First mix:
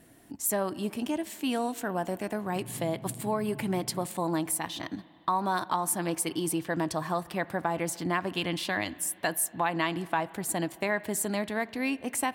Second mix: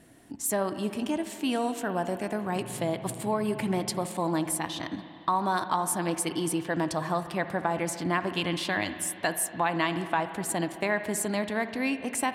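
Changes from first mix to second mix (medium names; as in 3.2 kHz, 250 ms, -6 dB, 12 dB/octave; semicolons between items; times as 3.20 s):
speech: send +10.0 dB; master: add low-pass 11 kHz 12 dB/octave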